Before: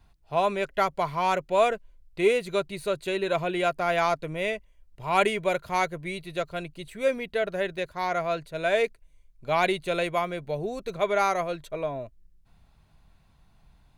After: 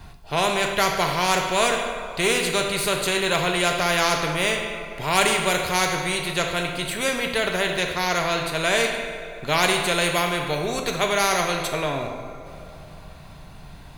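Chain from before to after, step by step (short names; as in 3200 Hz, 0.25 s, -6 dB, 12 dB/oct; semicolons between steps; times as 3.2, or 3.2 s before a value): two-slope reverb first 0.85 s, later 3.4 s, from -22 dB, DRR 4.5 dB; spectral compressor 2:1; gain +5 dB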